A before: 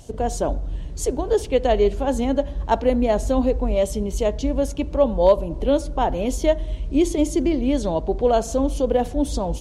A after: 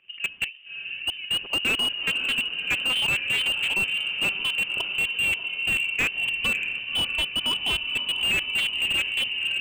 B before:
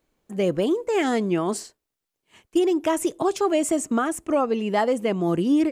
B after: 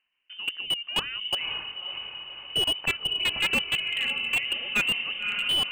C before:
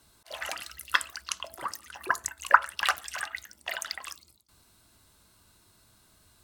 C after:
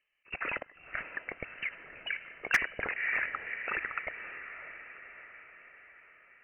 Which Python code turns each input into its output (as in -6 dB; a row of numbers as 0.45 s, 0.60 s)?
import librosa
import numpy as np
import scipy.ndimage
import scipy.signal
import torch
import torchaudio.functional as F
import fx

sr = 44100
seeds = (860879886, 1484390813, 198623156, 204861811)

p1 = fx.level_steps(x, sr, step_db=20)
p2 = scipy.signal.sosfilt(scipy.signal.bessel(4, 400.0, 'highpass', norm='mag', fs=sr, output='sos'), p1)
p3 = fx.env_lowpass(p2, sr, base_hz=1700.0, full_db=-20.5)
p4 = p3 + fx.echo_diffused(p3, sr, ms=569, feedback_pct=57, wet_db=-11.0, dry=0)
p5 = fx.freq_invert(p4, sr, carrier_hz=3300)
p6 = fx.slew_limit(p5, sr, full_power_hz=86.0)
y = p6 * 10.0 ** (8.0 / 20.0)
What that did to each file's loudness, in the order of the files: -2.0 LU, -3.0 LU, -5.0 LU